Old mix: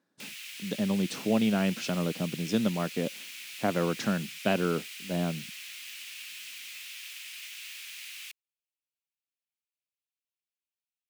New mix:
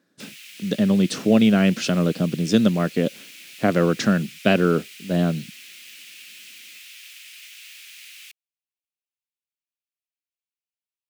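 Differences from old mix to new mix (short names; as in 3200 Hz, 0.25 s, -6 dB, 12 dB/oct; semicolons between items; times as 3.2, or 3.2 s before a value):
speech +10.0 dB; master: add bell 900 Hz -9 dB 0.55 oct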